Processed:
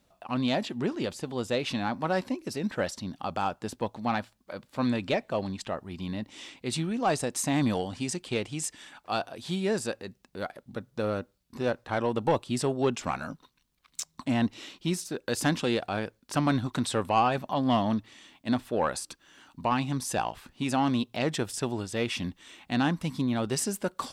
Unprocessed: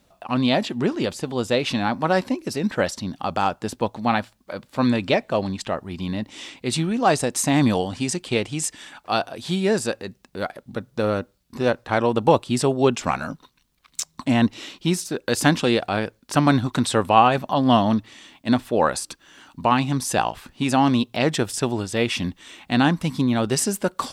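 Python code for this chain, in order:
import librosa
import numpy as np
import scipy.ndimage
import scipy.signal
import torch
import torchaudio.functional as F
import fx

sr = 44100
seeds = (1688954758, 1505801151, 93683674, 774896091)

y = 10.0 ** (-7.5 / 20.0) * np.tanh(x / 10.0 ** (-7.5 / 20.0))
y = y * librosa.db_to_amplitude(-7.0)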